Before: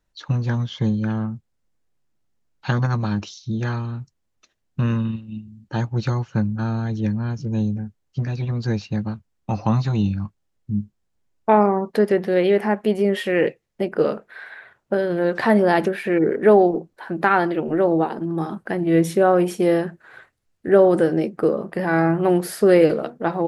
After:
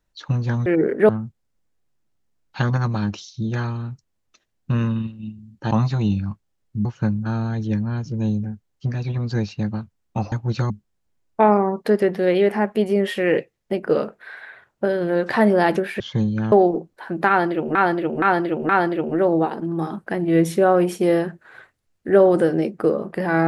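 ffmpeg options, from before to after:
-filter_complex "[0:a]asplit=12[a][b][c][d][e][f][g][h][i][j][k][l];[a]atrim=end=0.662[m];[b]atrim=start=16.088:end=16.522[n];[c]atrim=start=1.178:end=5.802[o];[d]atrim=start=9.648:end=10.792[p];[e]atrim=start=6.178:end=9.652[q];[f]atrim=start=5.798:end=6.182[r];[g]atrim=start=10.788:end=16.092[s];[h]atrim=start=0.658:end=1.182[t];[i]atrim=start=16.518:end=17.752[u];[j]atrim=start=17.278:end=17.752[v];[k]atrim=start=17.278:end=17.752[w];[l]atrim=start=17.278[x];[m][n]acrossfade=d=0.004:c1=hsin:c2=hsin[y];[y][o]acrossfade=d=0.004:c1=hsin:c2=hsin[z];[z][p]acrossfade=d=0.004:c1=hsin:c2=hsin[aa];[aa][q]acrossfade=d=0.004:c1=hsin:c2=hsin[ab];[ab][r]acrossfade=d=0.004:c1=hsin:c2=hsin[ac];[ac][s]acrossfade=d=0.004:c1=hsin:c2=hsin[ad];[ad][t]acrossfade=d=0.004:c1=hsin:c2=hsin[ae];[ae][u]acrossfade=d=0.004:c1=hsin:c2=hsin[af];[af][v]acrossfade=d=0.004:c1=hsin:c2=hsin[ag];[ag][w]acrossfade=d=0.004:c1=hsin:c2=hsin[ah];[ah][x]acrossfade=d=0.004:c1=hsin:c2=hsin"

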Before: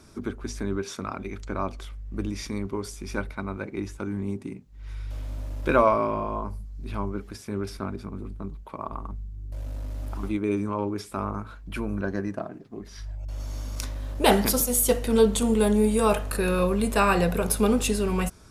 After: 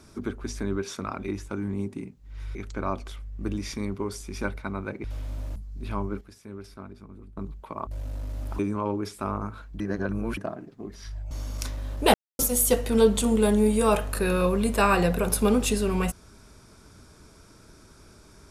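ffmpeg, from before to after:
-filter_complex "[0:a]asplit=14[a][b][c][d][e][f][g][h][i][j][k][l][m][n];[a]atrim=end=1.282[o];[b]atrim=start=3.768:end=5.042[p];[c]atrim=start=1.278:end=3.772[q];[d]atrim=start=5.038:end=5.562[r];[e]atrim=start=6.588:end=7.242[s];[f]atrim=start=7.238:end=8.402,asetpts=PTS-STARTPTS,volume=-10dB[t];[g]atrim=start=8.398:end=8.902[u];[h]atrim=start=9.478:end=10.202[v];[i]atrim=start=10.518:end=11.732[w];[j]atrim=start=11.728:end=12.302,asetpts=PTS-STARTPTS,areverse[x];[k]atrim=start=12.298:end=13.242[y];[l]atrim=start=13.488:end=14.32,asetpts=PTS-STARTPTS,afade=t=out:st=0.828:d=0.004:c=hsin[z];[m]atrim=start=14.32:end=14.57,asetpts=PTS-STARTPTS,volume=0[aa];[n]atrim=start=14.57,asetpts=PTS-STARTPTS,afade=t=in:d=0.004:c=hsin[ab];[o][p]acrossfade=d=0.004:c1=hsin:c2=hsin[ac];[ac][q]acrossfade=d=0.004:c1=hsin:c2=hsin[ad];[ad][r]acrossfade=d=0.004:c1=hsin:c2=hsin[ae];[ae][s]acrossfade=d=0.004:c1=hsin:c2=hsin[af];[af][t]acrossfade=d=0.004:c1=hsin:c2=hsin[ag];[ag][u]acrossfade=d=0.004:c1=hsin:c2=hsin[ah];[ah][v]acrossfade=d=0.004:c1=hsin:c2=hsin[ai];[ai][w]acrossfade=d=0.004:c1=hsin:c2=hsin[aj];[aj][x]acrossfade=d=0.004:c1=hsin:c2=hsin[ak];[ak][y]acrossfade=d=0.004:c1=hsin:c2=hsin[al];[z][aa][ab]concat=n=3:v=0:a=1[am];[al][am]acrossfade=d=0.004:c1=hsin:c2=hsin"

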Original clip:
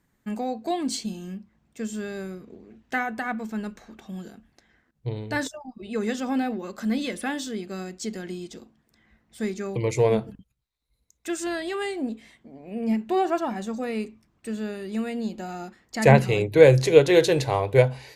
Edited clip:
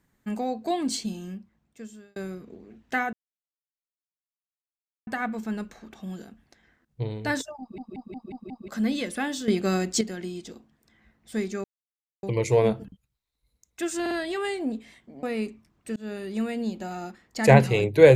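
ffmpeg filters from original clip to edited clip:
-filter_complex "[0:a]asplit=16[a][b][c][d][e][f][g][h][i][j][k][l][m][n][o][p];[a]atrim=end=2.16,asetpts=PTS-STARTPTS,afade=t=out:st=1.17:d=0.99[q];[b]atrim=start=2.16:end=3.13,asetpts=PTS-STARTPTS,afade=t=in:d=0.004:c=hsin,afade=t=out:st=0.966:d=0.004:c=hsin,apad=pad_dur=1.94[r];[c]atrim=start=3.13:end=5.842,asetpts=PTS-STARTPTS,afade=t=in:d=0.004:c=hsin[s];[d]atrim=start=5.658:end=5.842[t];[e]atrim=start=5.658:end=5.842[u];[f]atrim=start=5.658:end=5.842[v];[g]atrim=start=5.658:end=5.842[w];[h]atrim=start=5.658:end=5.842[x];[i]atrim=start=6.738:end=7.542[y];[j]atrim=start=7.538:end=8.072,asetpts=PTS-STARTPTS,volume=9.5dB[z];[k]atrim=start=8.068:end=9.7,asetpts=PTS-STARTPTS,afade=t=out:st=1.628:d=0.004:c=hsin,apad=pad_dur=0.59[aa];[l]atrim=start=9.7:end=11.532,asetpts=PTS-STARTPTS,afade=t=in:d=0.004:c=hsin[ab];[m]atrim=start=11.478:end=11.532[ac];[n]atrim=start=11.478:end=12.602[ad];[o]atrim=start=13.808:end=14.54,asetpts=PTS-STARTPTS,afade=t=out:st=0.728:d=0.004:c=hsin[ae];[p]atrim=start=14.54,asetpts=PTS-STARTPTS,afade=t=in:d=0.26:c=qsin[af];[q][r][s]concat=n=3:v=0:a=1[ag];[ag][t]acrossfade=d=0.004:c1=hsin:c2=hsin[ah];[ah][u]acrossfade=d=0.004:c1=hsin:c2=hsin[ai];[ai][v]acrossfade=d=0.004:c1=hsin:c2=hsin[aj];[aj][w]acrossfade=d=0.004:c1=hsin:c2=hsin[ak];[ak][x]acrossfade=d=0.004:c1=hsin:c2=hsin[al];[al][y]acrossfade=d=0.004:c1=hsin:c2=hsin[am];[am][z]acrossfade=d=0.004:c1=hsin:c2=hsin[an];[aa][ab]concat=n=2:v=0:a=1[ao];[an][ao]acrossfade=d=0.004:c1=hsin:c2=hsin[ap];[ap][ac]acrossfade=d=0.004:c1=hsin:c2=hsin[aq];[aq][ad]acrossfade=d=0.004:c1=hsin:c2=hsin[ar];[ae][af]concat=n=2:v=0:a=1[as];[ar][as]acrossfade=d=0.004:c1=hsin:c2=hsin"

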